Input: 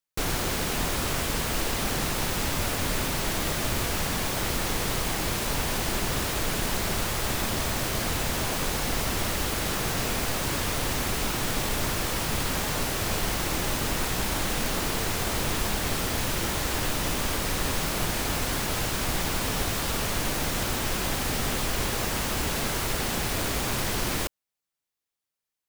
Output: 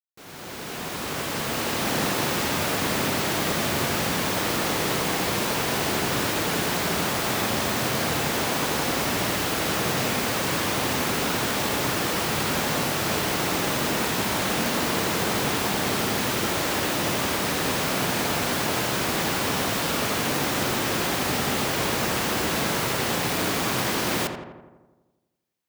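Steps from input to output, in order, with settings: opening faded in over 1.97 s; HPF 140 Hz 12 dB/oct; bell 10000 Hz -3.5 dB 1.4 oct; on a send: darkening echo 84 ms, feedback 65%, low-pass 2300 Hz, level -6.5 dB; on the sum: gain +4 dB

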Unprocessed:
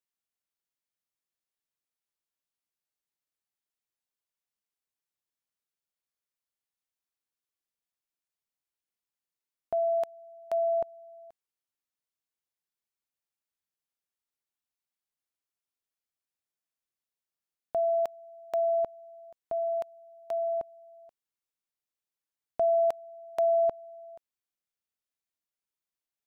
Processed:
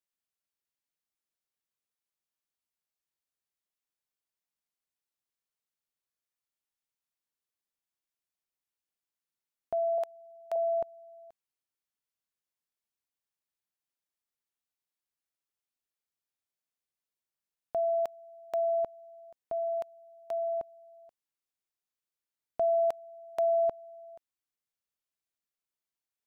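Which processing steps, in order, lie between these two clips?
9.98–10.56 HPF 420 Hz 12 dB/oct; gain -2 dB

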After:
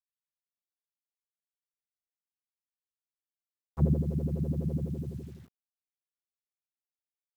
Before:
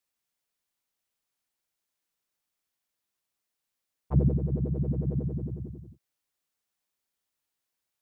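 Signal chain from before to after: speed mistake 44.1 kHz file played as 48 kHz; dynamic EQ 730 Hz, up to -3 dB, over -43 dBFS, Q 1.2; requantised 10-bit, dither none; gain -2 dB

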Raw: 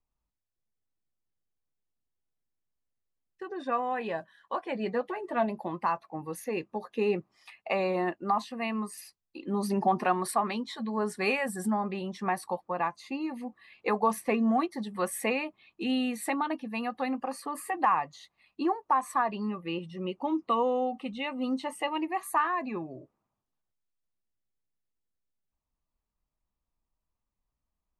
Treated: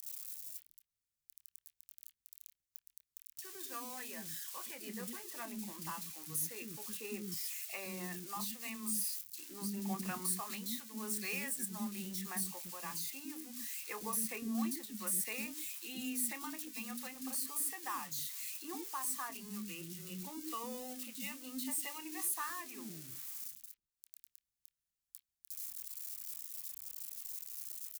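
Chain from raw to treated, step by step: switching spikes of -27.5 dBFS; passive tone stack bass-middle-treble 6-0-2; doubler 26 ms -13 dB; three bands offset in time highs, mids, lows 30/140 ms, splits 330/3300 Hz; mismatched tape noise reduction encoder only; gain +9 dB

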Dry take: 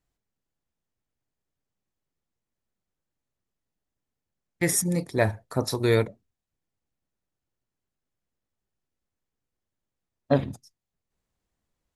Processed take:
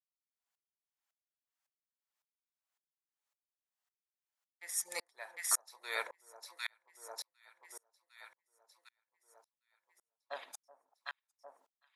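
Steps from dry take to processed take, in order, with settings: HPF 800 Hz 24 dB/oct; on a send: echo with dull and thin repeats by turns 0.377 s, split 1100 Hz, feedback 70%, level -5.5 dB; on the sum: dB-ramp tremolo swelling 1.8 Hz, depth 39 dB; gain +4.5 dB

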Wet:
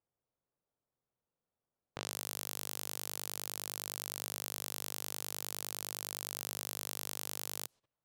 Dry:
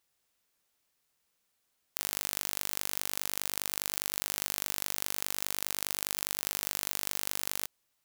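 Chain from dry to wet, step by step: low-pass opened by the level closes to 1100 Hz, open at -43.5 dBFS; graphic EQ 125/500/2000 Hz +8/+4/-5 dB; level quantiser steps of 17 dB; gain +7 dB

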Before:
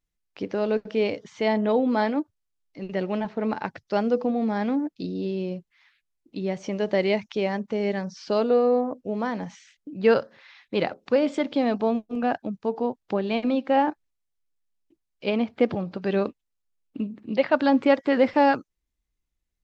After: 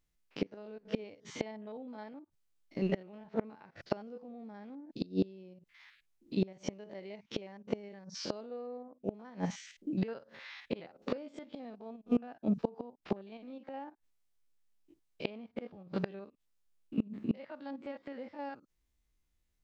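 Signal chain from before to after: stepped spectrum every 50 ms; flipped gate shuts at -22 dBFS, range -26 dB; gain +3.5 dB

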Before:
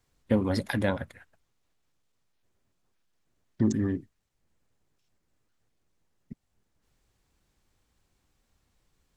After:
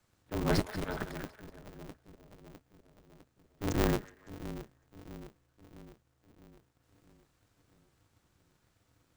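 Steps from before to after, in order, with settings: bell 1400 Hz +6 dB 0.42 oct; auto swell 0.209 s; frequency shift -28 Hz; split-band echo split 500 Hz, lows 0.655 s, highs 0.186 s, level -13 dB; polarity switched at an audio rate 100 Hz

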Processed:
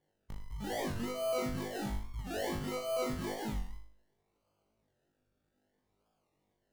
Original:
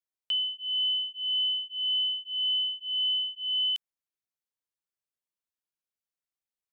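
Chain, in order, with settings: per-bin compression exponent 0.6; one-sided clip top -38.5 dBFS, bottom -26.5 dBFS; decimation with a swept rate 34×, swing 60% 0.61 Hz; notch 2500 Hz, Q 19; on a send: flutter echo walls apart 3.4 m, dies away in 0.51 s; on the sum: record warp 45 rpm, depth 160 cents; gain -7.5 dB

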